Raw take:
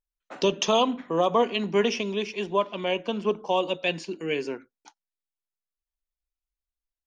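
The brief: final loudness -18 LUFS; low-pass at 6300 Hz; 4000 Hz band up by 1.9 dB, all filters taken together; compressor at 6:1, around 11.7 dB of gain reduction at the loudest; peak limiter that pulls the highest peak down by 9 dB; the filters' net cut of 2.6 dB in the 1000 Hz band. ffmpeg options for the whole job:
-af "lowpass=6.3k,equalizer=f=1k:t=o:g=-3.5,equalizer=f=4k:t=o:g=3.5,acompressor=threshold=-31dB:ratio=6,volume=18.5dB,alimiter=limit=-7dB:level=0:latency=1"

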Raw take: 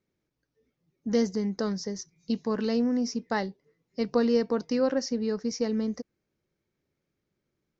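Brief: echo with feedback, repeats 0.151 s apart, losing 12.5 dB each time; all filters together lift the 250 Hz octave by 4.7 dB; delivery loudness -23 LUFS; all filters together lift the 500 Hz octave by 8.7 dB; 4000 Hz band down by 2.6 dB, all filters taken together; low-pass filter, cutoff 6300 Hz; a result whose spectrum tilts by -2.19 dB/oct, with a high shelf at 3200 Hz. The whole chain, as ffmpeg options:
-af "lowpass=6.3k,equalizer=f=250:t=o:g=3.5,equalizer=f=500:t=o:g=8.5,highshelf=f=3.2k:g=3.5,equalizer=f=4k:t=o:g=-5.5,aecho=1:1:151|302|453:0.237|0.0569|0.0137,volume=-1dB"

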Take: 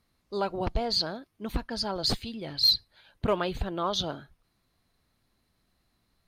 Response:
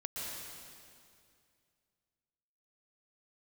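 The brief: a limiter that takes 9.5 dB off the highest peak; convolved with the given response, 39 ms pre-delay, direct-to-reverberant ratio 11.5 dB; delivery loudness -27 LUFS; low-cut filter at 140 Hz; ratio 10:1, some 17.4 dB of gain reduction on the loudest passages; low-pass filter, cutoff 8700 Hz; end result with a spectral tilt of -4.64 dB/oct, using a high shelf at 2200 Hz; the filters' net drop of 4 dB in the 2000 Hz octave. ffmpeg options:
-filter_complex "[0:a]highpass=140,lowpass=8.7k,equalizer=f=2k:t=o:g=-7.5,highshelf=f=2.2k:g=3,acompressor=threshold=-35dB:ratio=10,alimiter=level_in=10dB:limit=-24dB:level=0:latency=1,volume=-10dB,asplit=2[a][b];[1:a]atrim=start_sample=2205,adelay=39[c];[b][c]afir=irnorm=-1:irlink=0,volume=-13dB[d];[a][d]amix=inputs=2:normalize=0,volume=16.5dB"

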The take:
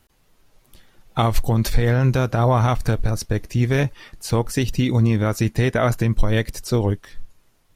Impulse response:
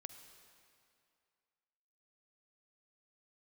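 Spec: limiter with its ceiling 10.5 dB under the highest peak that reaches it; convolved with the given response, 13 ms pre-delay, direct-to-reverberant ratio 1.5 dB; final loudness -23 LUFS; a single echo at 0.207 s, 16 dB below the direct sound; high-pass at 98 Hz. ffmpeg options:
-filter_complex "[0:a]highpass=98,alimiter=limit=-16dB:level=0:latency=1,aecho=1:1:207:0.158,asplit=2[a][b];[1:a]atrim=start_sample=2205,adelay=13[c];[b][c]afir=irnorm=-1:irlink=0,volume=3.5dB[d];[a][d]amix=inputs=2:normalize=0,volume=2.5dB"

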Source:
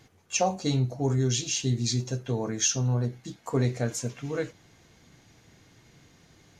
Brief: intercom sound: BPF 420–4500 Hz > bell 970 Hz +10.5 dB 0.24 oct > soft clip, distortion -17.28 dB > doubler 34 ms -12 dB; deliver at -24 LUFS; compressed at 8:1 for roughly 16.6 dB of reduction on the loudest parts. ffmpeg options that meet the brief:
-filter_complex "[0:a]acompressor=threshold=-39dB:ratio=8,highpass=420,lowpass=4.5k,equalizer=f=970:t=o:w=0.24:g=10.5,asoftclip=threshold=-31.5dB,asplit=2[a][b];[b]adelay=34,volume=-12dB[c];[a][c]amix=inputs=2:normalize=0,volume=24dB"

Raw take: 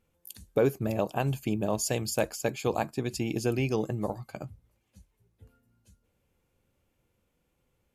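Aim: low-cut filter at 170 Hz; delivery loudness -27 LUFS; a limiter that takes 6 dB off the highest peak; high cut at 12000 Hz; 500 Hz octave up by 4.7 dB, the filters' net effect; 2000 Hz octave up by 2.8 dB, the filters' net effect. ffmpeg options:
-af "highpass=170,lowpass=12k,equalizer=f=500:t=o:g=5.5,equalizer=f=2k:t=o:g=3.5,volume=2.5dB,alimiter=limit=-13.5dB:level=0:latency=1"

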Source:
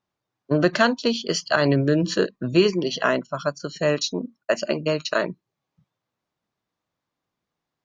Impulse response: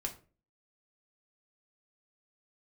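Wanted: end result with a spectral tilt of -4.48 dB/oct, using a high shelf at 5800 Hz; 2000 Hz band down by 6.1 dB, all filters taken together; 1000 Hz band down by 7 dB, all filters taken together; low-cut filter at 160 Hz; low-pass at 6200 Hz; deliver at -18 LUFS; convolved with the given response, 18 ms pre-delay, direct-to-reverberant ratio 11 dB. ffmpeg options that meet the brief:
-filter_complex "[0:a]highpass=160,lowpass=6.2k,equalizer=f=1k:t=o:g=-9,equalizer=f=2k:t=o:g=-5.5,highshelf=f=5.8k:g=8.5,asplit=2[a][b];[1:a]atrim=start_sample=2205,adelay=18[c];[b][c]afir=irnorm=-1:irlink=0,volume=-11.5dB[d];[a][d]amix=inputs=2:normalize=0,volume=6.5dB"

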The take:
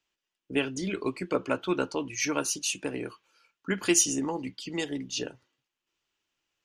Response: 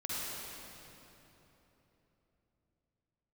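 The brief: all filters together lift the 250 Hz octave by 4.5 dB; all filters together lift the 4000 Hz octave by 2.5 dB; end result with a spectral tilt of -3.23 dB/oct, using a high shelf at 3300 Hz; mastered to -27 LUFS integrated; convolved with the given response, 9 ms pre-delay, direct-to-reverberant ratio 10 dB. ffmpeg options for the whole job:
-filter_complex "[0:a]equalizer=f=250:t=o:g=6,highshelf=f=3.3k:g=-4,equalizer=f=4k:t=o:g=6.5,asplit=2[a][b];[1:a]atrim=start_sample=2205,adelay=9[c];[b][c]afir=irnorm=-1:irlink=0,volume=-14dB[d];[a][d]amix=inputs=2:normalize=0,volume=0.5dB"

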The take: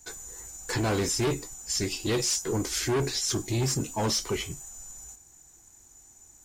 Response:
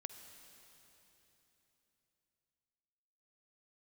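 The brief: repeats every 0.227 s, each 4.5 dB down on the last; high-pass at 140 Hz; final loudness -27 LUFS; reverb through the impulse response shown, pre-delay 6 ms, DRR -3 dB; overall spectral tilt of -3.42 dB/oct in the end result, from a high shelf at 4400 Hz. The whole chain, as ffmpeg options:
-filter_complex "[0:a]highpass=140,highshelf=f=4.4k:g=5,aecho=1:1:227|454|681|908|1135|1362|1589|1816|2043:0.596|0.357|0.214|0.129|0.0772|0.0463|0.0278|0.0167|0.01,asplit=2[a][b];[1:a]atrim=start_sample=2205,adelay=6[c];[b][c]afir=irnorm=-1:irlink=0,volume=7dB[d];[a][d]amix=inputs=2:normalize=0,volume=-7dB"

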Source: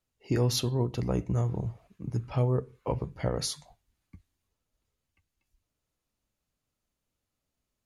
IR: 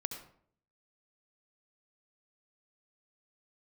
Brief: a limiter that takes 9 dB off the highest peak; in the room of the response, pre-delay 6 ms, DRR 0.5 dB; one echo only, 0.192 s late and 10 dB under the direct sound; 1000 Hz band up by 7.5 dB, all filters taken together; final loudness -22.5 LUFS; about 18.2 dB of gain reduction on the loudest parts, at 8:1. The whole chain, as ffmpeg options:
-filter_complex "[0:a]equalizer=f=1k:t=o:g=9,acompressor=threshold=-40dB:ratio=8,alimiter=level_in=11.5dB:limit=-24dB:level=0:latency=1,volume=-11.5dB,aecho=1:1:192:0.316,asplit=2[a][b];[1:a]atrim=start_sample=2205,adelay=6[c];[b][c]afir=irnorm=-1:irlink=0,volume=-0.5dB[d];[a][d]amix=inputs=2:normalize=0,volume=20.5dB"

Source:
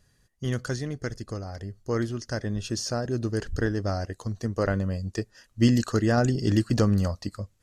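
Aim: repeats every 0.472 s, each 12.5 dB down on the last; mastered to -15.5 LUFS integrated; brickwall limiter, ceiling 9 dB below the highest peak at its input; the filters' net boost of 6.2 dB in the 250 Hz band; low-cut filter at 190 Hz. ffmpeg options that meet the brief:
-af "highpass=190,equalizer=f=250:t=o:g=9,alimiter=limit=-14dB:level=0:latency=1,aecho=1:1:472|944|1416:0.237|0.0569|0.0137,volume=11.5dB"

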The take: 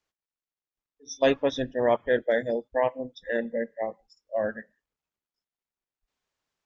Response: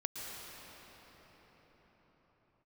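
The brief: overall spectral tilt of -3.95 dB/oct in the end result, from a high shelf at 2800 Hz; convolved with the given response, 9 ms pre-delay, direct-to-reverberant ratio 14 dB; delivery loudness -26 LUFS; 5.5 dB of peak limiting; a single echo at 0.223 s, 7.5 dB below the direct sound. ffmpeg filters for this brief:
-filter_complex "[0:a]highshelf=f=2.8k:g=6.5,alimiter=limit=-14.5dB:level=0:latency=1,aecho=1:1:223:0.422,asplit=2[a][b];[1:a]atrim=start_sample=2205,adelay=9[c];[b][c]afir=irnorm=-1:irlink=0,volume=-15.5dB[d];[a][d]amix=inputs=2:normalize=0,volume=2.5dB"

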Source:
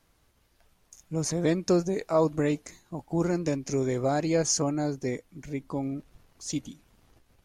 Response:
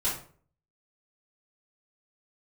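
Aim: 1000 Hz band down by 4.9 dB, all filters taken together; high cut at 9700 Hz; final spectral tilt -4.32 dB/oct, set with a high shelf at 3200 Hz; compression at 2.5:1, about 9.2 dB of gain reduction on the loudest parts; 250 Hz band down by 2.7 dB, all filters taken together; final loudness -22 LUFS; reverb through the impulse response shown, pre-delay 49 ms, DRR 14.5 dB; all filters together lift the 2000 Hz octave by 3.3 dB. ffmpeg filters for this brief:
-filter_complex "[0:a]lowpass=9.7k,equalizer=f=250:t=o:g=-3.5,equalizer=f=1k:t=o:g=-8.5,equalizer=f=2k:t=o:g=5,highshelf=f=3.2k:g=4.5,acompressor=threshold=-35dB:ratio=2.5,asplit=2[a][b];[1:a]atrim=start_sample=2205,adelay=49[c];[b][c]afir=irnorm=-1:irlink=0,volume=-22dB[d];[a][d]amix=inputs=2:normalize=0,volume=14.5dB"

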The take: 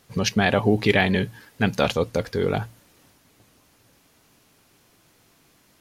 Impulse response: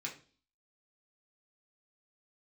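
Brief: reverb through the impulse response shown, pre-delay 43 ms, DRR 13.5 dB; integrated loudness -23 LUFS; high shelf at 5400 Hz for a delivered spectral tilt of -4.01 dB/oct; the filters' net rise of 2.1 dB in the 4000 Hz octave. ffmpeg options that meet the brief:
-filter_complex "[0:a]equalizer=f=4k:t=o:g=5.5,highshelf=f=5.4k:g=-7,asplit=2[a][b];[1:a]atrim=start_sample=2205,adelay=43[c];[b][c]afir=irnorm=-1:irlink=0,volume=-13.5dB[d];[a][d]amix=inputs=2:normalize=0,volume=-1dB"

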